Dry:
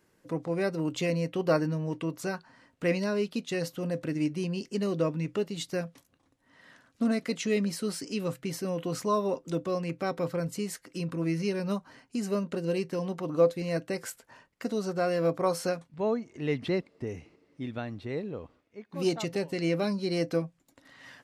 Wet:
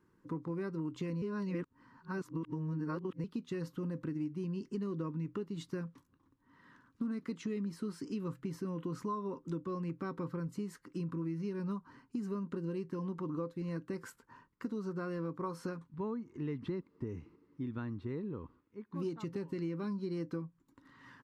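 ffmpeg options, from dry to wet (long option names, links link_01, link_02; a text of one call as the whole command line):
ffmpeg -i in.wav -filter_complex "[0:a]asplit=3[link_01][link_02][link_03];[link_01]atrim=end=1.222[link_04];[link_02]atrim=start=1.218:end=3.242,asetpts=PTS-STARTPTS,areverse[link_05];[link_03]atrim=start=3.238[link_06];[link_04][link_05]acrossfade=duration=0.004:curve1=hsin:curve2=hsin[link_07];[link_07][link_06]acrossfade=duration=0.004:curve1=hsin:curve2=hsin,firequalizer=gain_entry='entry(350,0);entry(670,-20);entry(970,1);entry(2200,-12);entry(8700,-16)':delay=0.05:min_phase=1,acompressor=threshold=-35dB:ratio=5" out.wav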